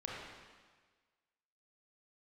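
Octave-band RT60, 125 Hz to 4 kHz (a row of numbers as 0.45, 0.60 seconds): 1.4, 1.4, 1.5, 1.5, 1.5, 1.4 seconds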